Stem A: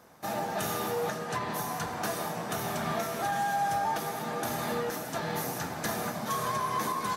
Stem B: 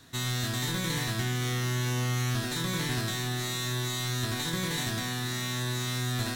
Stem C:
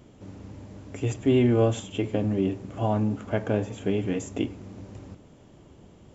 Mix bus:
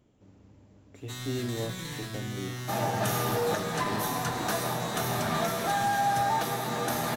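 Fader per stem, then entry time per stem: +2.5, -7.5, -13.5 dB; 2.45, 0.95, 0.00 s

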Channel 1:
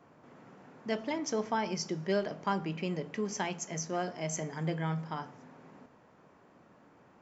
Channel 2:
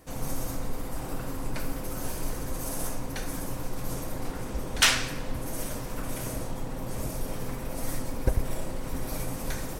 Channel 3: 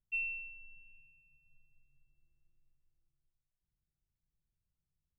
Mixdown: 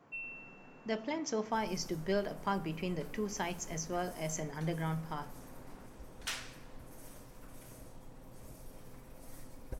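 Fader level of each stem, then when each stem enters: -2.5, -18.5, -7.0 dB; 0.00, 1.45, 0.00 s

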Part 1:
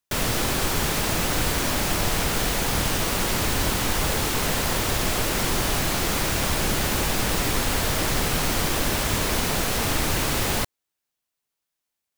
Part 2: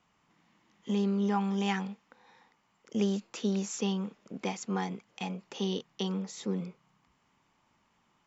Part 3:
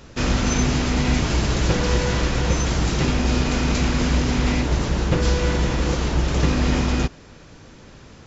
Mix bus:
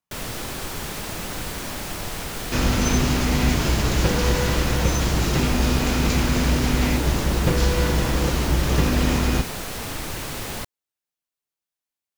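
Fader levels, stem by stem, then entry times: -7.0, -19.5, -0.5 dB; 0.00, 0.00, 2.35 s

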